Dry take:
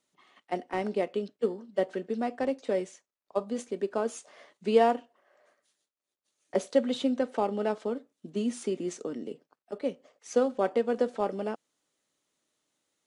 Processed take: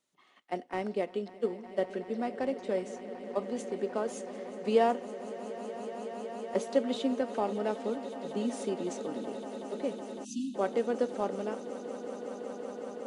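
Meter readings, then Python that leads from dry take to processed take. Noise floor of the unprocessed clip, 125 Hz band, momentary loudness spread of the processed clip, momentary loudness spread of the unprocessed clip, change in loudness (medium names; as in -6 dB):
under -85 dBFS, -2.0 dB, 10 LU, 11 LU, -3.5 dB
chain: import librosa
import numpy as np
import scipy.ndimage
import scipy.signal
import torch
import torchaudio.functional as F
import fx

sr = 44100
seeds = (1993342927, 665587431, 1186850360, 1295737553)

y = fx.echo_swell(x, sr, ms=186, loudest=8, wet_db=-17.5)
y = fx.spec_erase(y, sr, start_s=10.25, length_s=0.3, low_hz=330.0, high_hz=2500.0)
y = F.gain(torch.from_numpy(y), -3.0).numpy()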